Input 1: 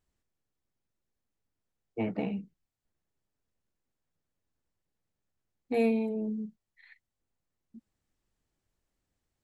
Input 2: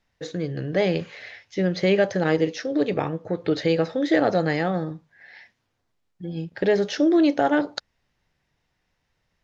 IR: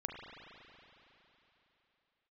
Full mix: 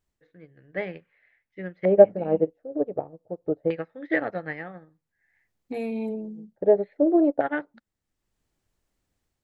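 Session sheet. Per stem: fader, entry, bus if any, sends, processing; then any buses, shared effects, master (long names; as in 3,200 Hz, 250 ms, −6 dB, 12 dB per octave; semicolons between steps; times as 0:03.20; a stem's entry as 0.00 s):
+0.5 dB, 0.00 s, no send, brickwall limiter −29 dBFS, peak gain reduction 10.5 dB; automatic gain control gain up to 4.5 dB; automatic ducking −11 dB, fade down 0.25 s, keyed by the second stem
+2.5 dB, 0.00 s, no send, auto-filter low-pass square 0.27 Hz 670–2,000 Hz; expander for the loud parts 2.5 to 1, over −31 dBFS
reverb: not used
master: no processing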